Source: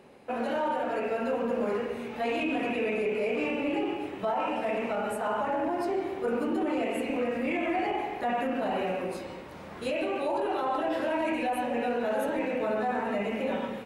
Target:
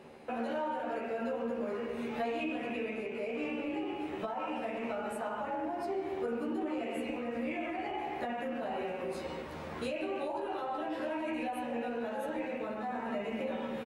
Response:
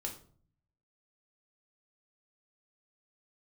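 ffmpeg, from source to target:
-filter_complex "[0:a]highshelf=frequency=10000:gain=-4.5,acompressor=threshold=-35dB:ratio=6,asplit=2[link_01][link_02];[link_02]adelay=13,volume=-4.5dB[link_03];[link_01][link_03]amix=inputs=2:normalize=0"

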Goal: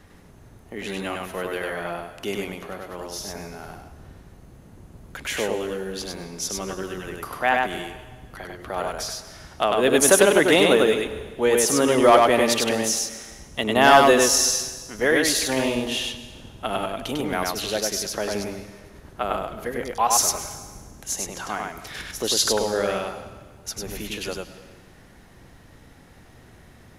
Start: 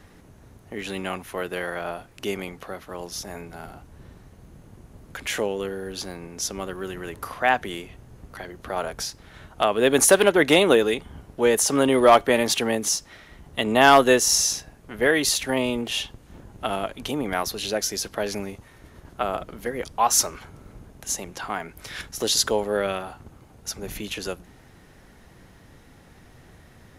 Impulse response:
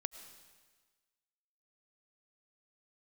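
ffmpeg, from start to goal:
-filter_complex "[0:a]asplit=2[link_01][link_02];[1:a]atrim=start_sample=2205,adelay=99[link_03];[link_02][link_03]afir=irnorm=-1:irlink=0,volume=-0.5dB[link_04];[link_01][link_04]amix=inputs=2:normalize=0,volume=-1dB"

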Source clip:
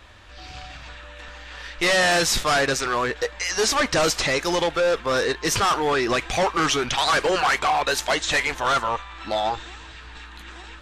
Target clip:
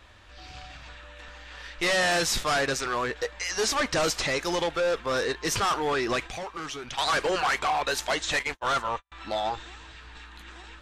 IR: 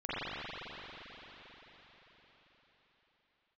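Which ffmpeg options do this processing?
-filter_complex "[0:a]asplit=3[link_01][link_02][link_03];[link_01]afade=type=out:start_time=6.26:duration=0.02[link_04];[link_02]acompressor=threshold=-30dB:ratio=5,afade=type=in:start_time=6.26:duration=0.02,afade=type=out:start_time=6.97:duration=0.02[link_05];[link_03]afade=type=in:start_time=6.97:duration=0.02[link_06];[link_04][link_05][link_06]amix=inputs=3:normalize=0,asettb=1/sr,asplit=3[link_07][link_08][link_09];[link_07]atrim=end=8.394[link_10];[link_08]atrim=start=8.39:end=9.12,asetpts=PTS-STARTPTS,afade=type=in:duration=0.004:curve=qsin,afade=type=out:start_time=0.726:duration=0.004:curve=qsin,agate=range=-46dB:threshold=-25dB:ratio=16:detection=peak[link_11];[link_09]atrim=start=9.116[link_12];[link_10][link_11]acrossfade=duration=0.004:curve1=hsin:curve2=qsin[link_13];[link_13][link_12]acrossfade=duration=0.004:curve1=qsin:curve2=hsin,volume=-5dB"

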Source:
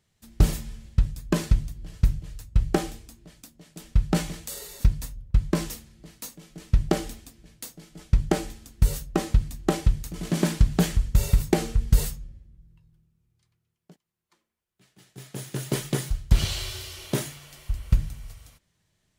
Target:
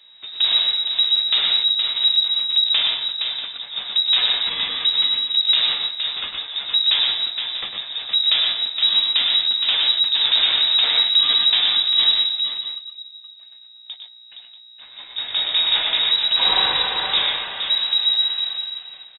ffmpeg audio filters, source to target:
ffmpeg -i in.wav -filter_complex "[0:a]equalizer=frequency=630:width=0.31:gain=6,apsyclip=9.5dB,acompressor=threshold=-11dB:ratio=6,aresample=16000,asoftclip=type=tanh:threshold=-18dB,aresample=44100,aeval=exprs='val(0)+0.002*(sin(2*PI*60*n/s)+sin(2*PI*2*60*n/s)/2+sin(2*PI*3*60*n/s)/3+sin(2*PI*4*60*n/s)/4+sin(2*PI*5*60*n/s)/5)':channel_layout=same,asplit=2[link_01][link_02];[link_02]adelay=16,volume=-12dB[link_03];[link_01][link_03]amix=inputs=2:normalize=0,aecho=1:1:102|122|467|638:0.398|0.562|0.447|0.224,lowpass=frequency=3300:width_type=q:width=0.5098,lowpass=frequency=3300:width_type=q:width=0.6013,lowpass=frequency=3300:width_type=q:width=0.9,lowpass=frequency=3300:width_type=q:width=2.563,afreqshift=-3900,volume=3.5dB" out.wav

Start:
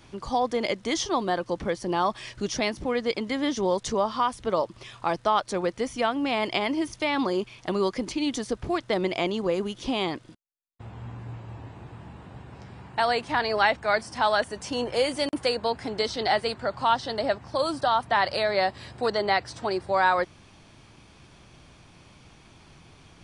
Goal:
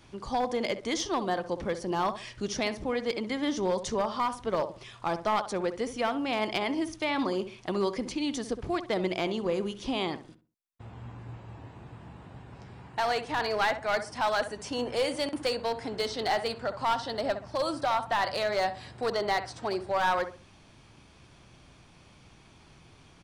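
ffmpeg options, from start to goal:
ffmpeg -i in.wav -filter_complex "[0:a]asplit=2[link_01][link_02];[link_02]adelay=65,lowpass=frequency=1500:poles=1,volume=-10.5dB,asplit=2[link_03][link_04];[link_04]adelay=65,lowpass=frequency=1500:poles=1,volume=0.32,asplit=2[link_05][link_06];[link_06]adelay=65,lowpass=frequency=1500:poles=1,volume=0.32[link_07];[link_01][link_03][link_05][link_07]amix=inputs=4:normalize=0,aeval=exprs='clip(val(0),-1,0.106)':channel_layout=same,volume=-3.5dB" out.wav

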